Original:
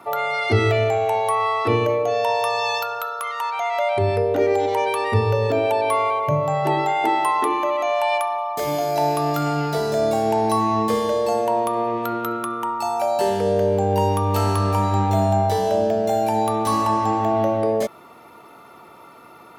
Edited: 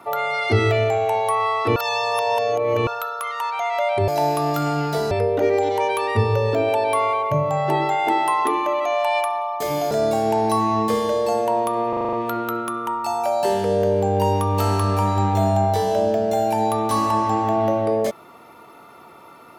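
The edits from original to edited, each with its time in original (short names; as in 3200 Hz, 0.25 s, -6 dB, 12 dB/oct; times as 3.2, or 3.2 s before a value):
1.76–2.87 reverse
8.88–9.91 move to 4.08
11.89 stutter 0.04 s, 7 plays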